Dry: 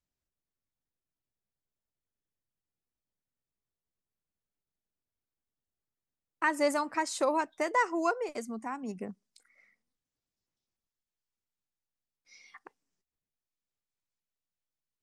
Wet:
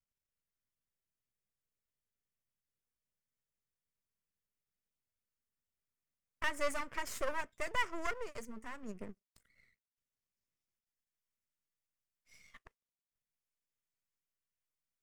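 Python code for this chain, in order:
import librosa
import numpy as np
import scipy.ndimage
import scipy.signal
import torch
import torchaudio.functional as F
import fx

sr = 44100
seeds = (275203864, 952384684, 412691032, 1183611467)

y = np.maximum(x, 0.0)
y = fx.graphic_eq_31(y, sr, hz=(315, 800, 2000, 4000), db=(-7, -10, 3, -7))
y = F.gain(torch.from_numpy(y), -2.0).numpy()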